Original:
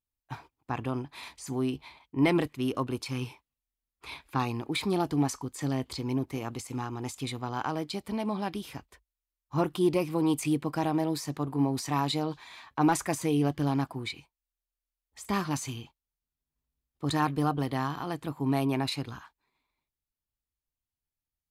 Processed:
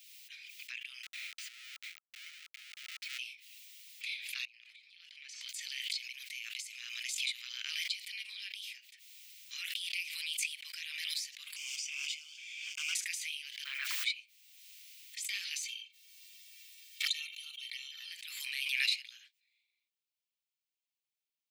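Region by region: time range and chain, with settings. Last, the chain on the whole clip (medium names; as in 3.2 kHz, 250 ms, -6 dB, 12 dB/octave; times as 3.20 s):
1.03–3.19 s: compression, threshold -41 dBFS + Schmitt trigger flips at -47.5 dBFS + resonant high-pass 1.3 kHz, resonance Q 11
4.45–5.49 s: low-pass 2.1 kHz + differentiator + compression 12:1, threshold -56 dBFS
11.56–12.95 s: CVSD coder 64 kbps + static phaser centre 2.7 kHz, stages 8
13.64–14.04 s: Chebyshev band-pass 180–1400 Hz + word length cut 12-bit, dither none
15.62–18.12 s: touch-sensitive flanger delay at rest 10.3 ms, full sweep at -26 dBFS + comb 2.2 ms, depth 75%
whole clip: steep high-pass 2.2 kHz 48 dB/octave; peaking EQ 12 kHz -11.5 dB 1.6 oct; swell ahead of each attack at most 28 dB/s; trim +6 dB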